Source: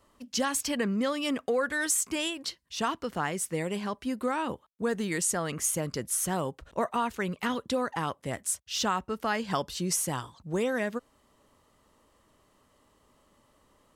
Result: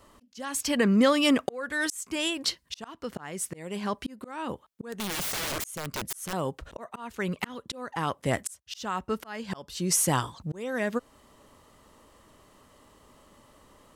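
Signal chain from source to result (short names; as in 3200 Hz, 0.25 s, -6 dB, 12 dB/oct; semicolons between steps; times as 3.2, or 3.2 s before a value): auto swell 0.638 s; 4.82–6.33 wrapped overs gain 34.5 dB; gain +8 dB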